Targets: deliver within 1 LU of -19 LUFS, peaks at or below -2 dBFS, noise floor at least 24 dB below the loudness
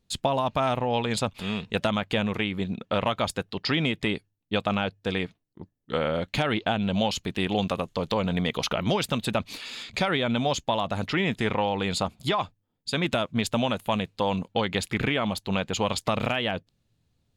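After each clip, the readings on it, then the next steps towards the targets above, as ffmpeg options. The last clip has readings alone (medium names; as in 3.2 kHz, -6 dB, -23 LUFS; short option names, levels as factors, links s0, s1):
loudness -27.5 LUFS; peak level -13.0 dBFS; loudness target -19.0 LUFS
-> -af "volume=2.66"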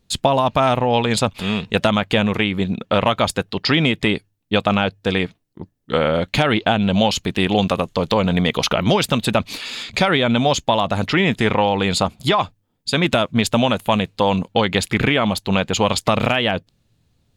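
loudness -19.0 LUFS; peak level -4.5 dBFS; noise floor -66 dBFS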